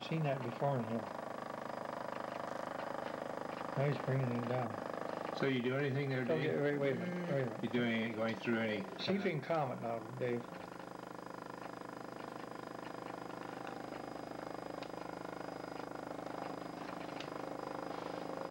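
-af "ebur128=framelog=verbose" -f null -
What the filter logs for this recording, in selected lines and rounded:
Integrated loudness:
  I:         -40.1 LUFS
  Threshold: -50.1 LUFS
Loudness range:
  LRA:         9.9 LU
  Threshold: -60.0 LUFS
  LRA low:   -46.4 LUFS
  LRA high:  -36.5 LUFS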